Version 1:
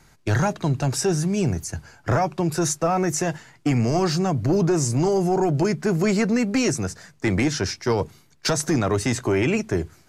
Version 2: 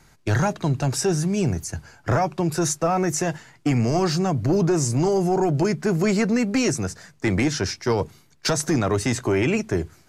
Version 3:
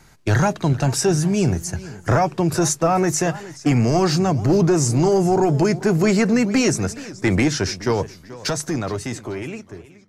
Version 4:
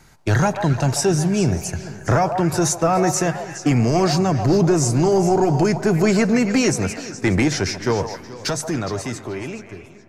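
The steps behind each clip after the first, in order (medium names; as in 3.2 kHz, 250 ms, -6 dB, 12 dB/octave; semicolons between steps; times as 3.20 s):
no audible change
fade out at the end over 2.72 s; modulated delay 427 ms, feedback 31%, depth 176 cents, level -17.5 dB; trim +3.5 dB
repeats whose band climbs or falls 138 ms, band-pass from 750 Hz, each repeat 1.4 oct, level -5 dB; on a send at -21 dB: reverberation RT60 5.1 s, pre-delay 45 ms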